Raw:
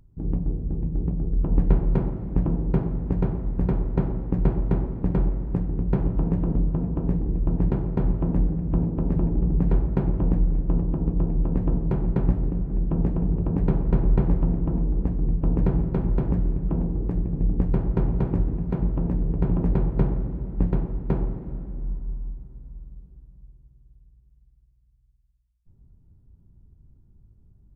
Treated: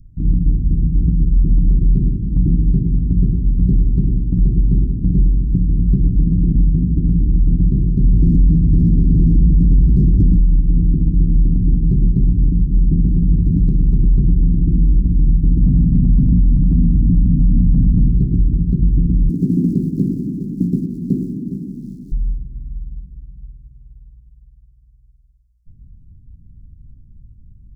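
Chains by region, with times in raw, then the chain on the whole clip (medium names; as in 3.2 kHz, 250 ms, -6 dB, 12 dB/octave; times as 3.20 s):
8.04–10.40 s: delay 534 ms -13 dB + waveshaping leveller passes 2
13.36–13.97 s: median filter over 41 samples + loudspeaker Doppler distortion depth 0.36 ms
15.62–18.08 s: resonant low shelf 310 Hz +6.5 dB, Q 3 + delay 333 ms -12 dB
19.29–22.12 s: companding laws mixed up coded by mu + resonant high-pass 240 Hz, resonance Q 2.1 + delay 411 ms -12.5 dB
whole clip: inverse Chebyshev band-stop 800–1800 Hz, stop band 70 dB; tilt EQ -1.5 dB/octave; peak limiter -12 dBFS; trim +6 dB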